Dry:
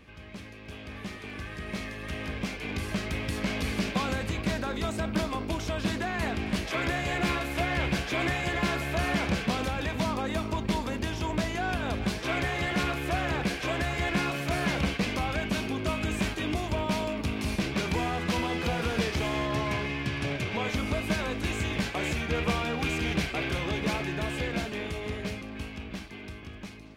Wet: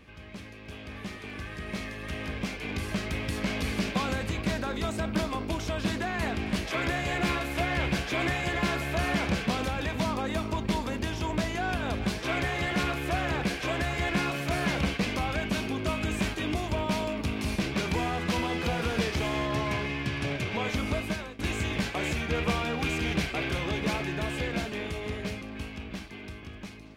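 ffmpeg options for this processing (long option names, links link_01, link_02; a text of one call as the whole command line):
ffmpeg -i in.wav -filter_complex "[0:a]asplit=2[link_01][link_02];[link_01]atrim=end=21.39,asetpts=PTS-STARTPTS,afade=type=out:start_time=20.96:duration=0.43:silence=0.11885[link_03];[link_02]atrim=start=21.39,asetpts=PTS-STARTPTS,afade=type=in:duration=0.004:curve=hsin:silence=0.11885[link_04];[link_03][link_04]concat=n=2:v=0:a=1" out.wav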